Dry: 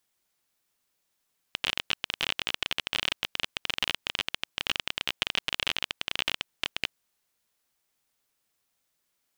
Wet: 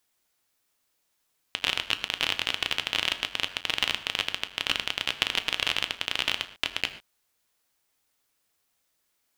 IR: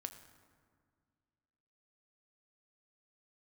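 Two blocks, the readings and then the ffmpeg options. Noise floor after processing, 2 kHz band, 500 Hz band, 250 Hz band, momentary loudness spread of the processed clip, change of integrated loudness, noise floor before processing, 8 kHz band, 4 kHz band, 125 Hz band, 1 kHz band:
-75 dBFS, +3.0 dB, +2.5 dB, +2.0 dB, 4 LU, +3.0 dB, -78 dBFS, +3.0 dB, +3.0 dB, +1.5 dB, +3.0 dB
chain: -filter_complex "[0:a]equalizer=f=140:w=0.96:g=-3[a];[1:a]atrim=start_sample=2205,atrim=end_sample=6615[b];[a][b]afir=irnorm=-1:irlink=0,volume=6.5dB"

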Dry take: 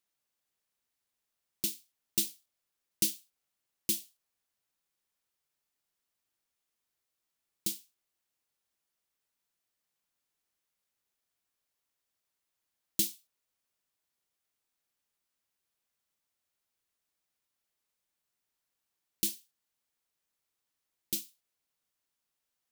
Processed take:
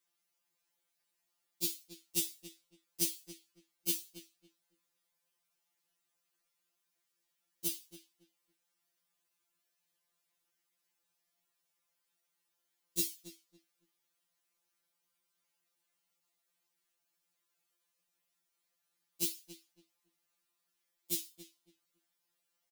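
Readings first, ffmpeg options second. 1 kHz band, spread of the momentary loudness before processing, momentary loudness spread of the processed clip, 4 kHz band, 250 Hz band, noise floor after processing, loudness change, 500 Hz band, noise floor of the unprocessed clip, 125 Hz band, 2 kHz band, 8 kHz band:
n/a, 14 LU, 20 LU, -3.0 dB, -2.0 dB, -83 dBFS, -3.0 dB, +1.5 dB, under -85 dBFS, -1.0 dB, -1.5 dB, -2.5 dB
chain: -filter_complex "[0:a]lowshelf=f=100:g=-8,acrossover=split=160[a][b];[b]acompressor=threshold=-35dB:ratio=2[c];[a][c]amix=inputs=2:normalize=0,asplit=2[d][e];[e]adelay=279,lowpass=f=2.8k:p=1,volume=-11.5dB,asplit=2[f][g];[g]adelay=279,lowpass=f=2.8k:p=1,volume=0.22,asplit=2[h][i];[i]adelay=279,lowpass=f=2.8k:p=1,volume=0.22[j];[d][f][h][j]amix=inputs=4:normalize=0,afftfilt=real='re*2.83*eq(mod(b,8),0)':imag='im*2.83*eq(mod(b,8),0)':win_size=2048:overlap=0.75,volume=4.5dB"

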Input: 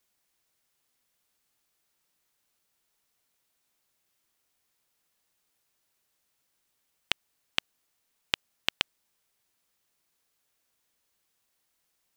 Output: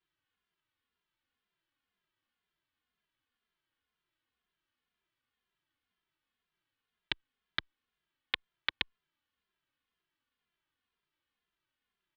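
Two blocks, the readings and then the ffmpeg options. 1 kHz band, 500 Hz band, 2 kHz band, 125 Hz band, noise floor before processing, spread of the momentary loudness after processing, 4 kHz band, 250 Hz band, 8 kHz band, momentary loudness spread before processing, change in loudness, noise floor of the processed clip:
-5.0 dB, -8.0 dB, -3.0 dB, -4.0 dB, -77 dBFS, 4 LU, -6.0 dB, -5.0 dB, under -20 dB, 3 LU, -5.0 dB, under -85 dBFS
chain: -filter_complex "[0:a]highpass=f=220:w=0.5412,highpass=f=220:w=1.3066,equalizer=f=370:t=q:w=4:g=4,equalizer=f=770:t=q:w=4:g=3,equalizer=f=1.2k:t=q:w=4:g=-4,equalizer=f=2.4k:t=q:w=4:g=6,lowpass=f=3.4k:w=0.5412,lowpass=f=3.4k:w=1.3066,aeval=exprs='val(0)*sin(2*PI*700*n/s)':c=same,asplit=2[a][b];[b]adelay=2.5,afreqshift=-2[c];[a][c]amix=inputs=2:normalize=1"

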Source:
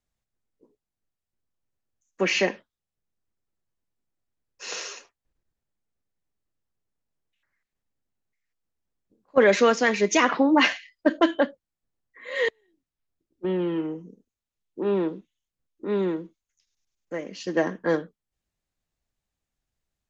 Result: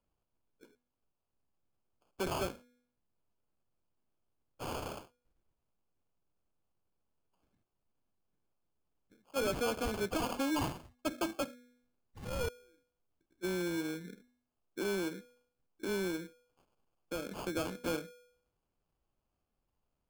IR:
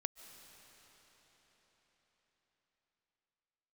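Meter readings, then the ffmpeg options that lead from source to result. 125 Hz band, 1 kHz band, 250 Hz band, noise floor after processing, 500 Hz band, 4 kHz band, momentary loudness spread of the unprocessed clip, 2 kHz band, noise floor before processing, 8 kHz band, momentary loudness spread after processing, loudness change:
-6.0 dB, -12.5 dB, -12.0 dB, -85 dBFS, -13.5 dB, -12.0 dB, 16 LU, -15.5 dB, under -85 dBFS, n/a, 12 LU, -13.0 dB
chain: -af "bandreject=f=246.2:t=h:w=4,bandreject=f=492.4:t=h:w=4,acompressor=threshold=-39dB:ratio=2,acrusher=samples=23:mix=1:aa=0.000001,asoftclip=type=tanh:threshold=-26dB"

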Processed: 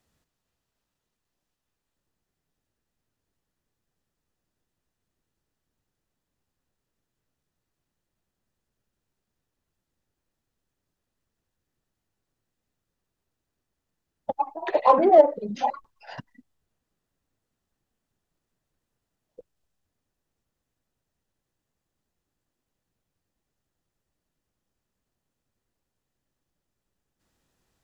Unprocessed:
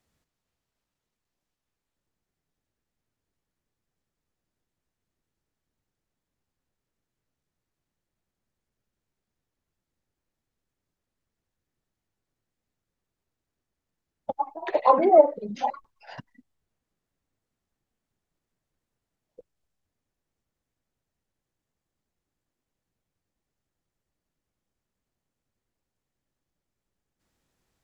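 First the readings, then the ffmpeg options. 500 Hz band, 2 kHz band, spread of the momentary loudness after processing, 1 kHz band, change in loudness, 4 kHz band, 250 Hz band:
+1.0 dB, +2.0 dB, 16 LU, +1.0 dB, +1.0 dB, n/a, +1.5 dB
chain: -filter_complex "[0:a]asplit=2[a][b];[b]asoftclip=type=tanh:threshold=-20dB,volume=-10dB[c];[a][c]amix=inputs=2:normalize=0,bandreject=f=2.2k:w=18"

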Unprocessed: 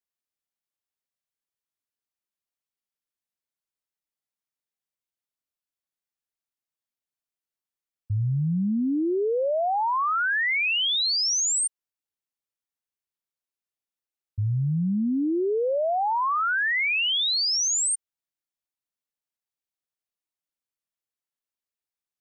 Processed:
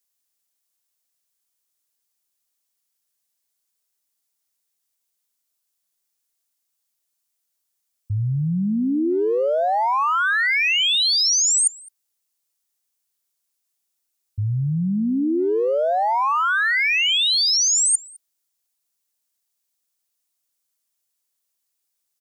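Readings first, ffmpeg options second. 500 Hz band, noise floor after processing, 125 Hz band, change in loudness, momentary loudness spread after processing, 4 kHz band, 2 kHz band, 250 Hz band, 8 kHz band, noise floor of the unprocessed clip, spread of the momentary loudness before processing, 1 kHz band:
+4.0 dB, -77 dBFS, +2.5 dB, +5.0 dB, 8 LU, +5.5 dB, +4.5 dB, +3.5 dB, +6.0 dB, under -85 dBFS, 6 LU, +4.5 dB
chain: -filter_complex "[0:a]bass=f=250:g=-3,treble=f=4k:g=12,areverse,acompressor=threshold=-23dB:ratio=8,areverse,asplit=2[a][b];[b]adelay=210,highpass=300,lowpass=3.4k,asoftclip=type=hard:threshold=-27.5dB,volume=-7dB[c];[a][c]amix=inputs=2:normalize=0,volume=5.5dB"

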